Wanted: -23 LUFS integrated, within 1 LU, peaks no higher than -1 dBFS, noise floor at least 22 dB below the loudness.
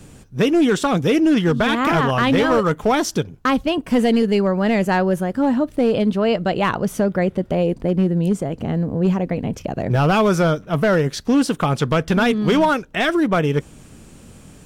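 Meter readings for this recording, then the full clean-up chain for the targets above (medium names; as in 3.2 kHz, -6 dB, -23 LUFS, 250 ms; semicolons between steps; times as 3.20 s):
clipped samples 1.0%; clipping level -10.5 dBFS; loudness -18.5 LUFS; peak level -10.5 dBFS; loudness target -23.0 LUFS
-> clip repair -10.5 dBFS; trim -4.5 dB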